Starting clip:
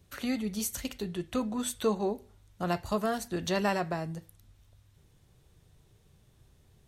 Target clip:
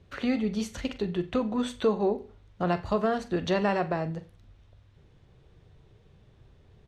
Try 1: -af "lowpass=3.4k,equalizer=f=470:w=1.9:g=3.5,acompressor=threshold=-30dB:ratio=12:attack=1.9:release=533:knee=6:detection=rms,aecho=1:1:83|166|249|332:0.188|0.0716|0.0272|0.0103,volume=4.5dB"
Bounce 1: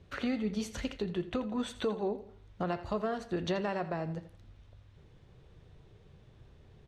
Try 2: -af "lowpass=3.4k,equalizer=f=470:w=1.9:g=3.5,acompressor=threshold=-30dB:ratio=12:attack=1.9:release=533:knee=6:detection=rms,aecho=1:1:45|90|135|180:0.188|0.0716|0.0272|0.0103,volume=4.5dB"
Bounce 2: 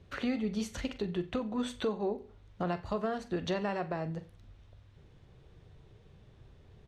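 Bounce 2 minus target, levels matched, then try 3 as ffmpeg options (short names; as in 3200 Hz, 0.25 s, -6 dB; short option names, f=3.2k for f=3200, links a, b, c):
compressor: peak gain reduction +8.5 dB
-af "lowpass=3.4k,equalizer=f=470:w=1.9:g=3.5,acompressor=threshold=-20.5dB:ratio=12:attack=1.9:release=533:knee=6:detection=rms,aecho=1:1:45|90|135|180:0.188|0.0716|0.0272|0.0103,volume=4.5dB"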